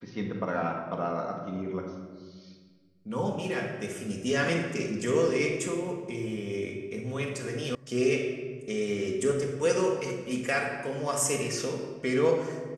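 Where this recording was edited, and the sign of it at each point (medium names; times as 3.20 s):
7.75 s: sound stops dead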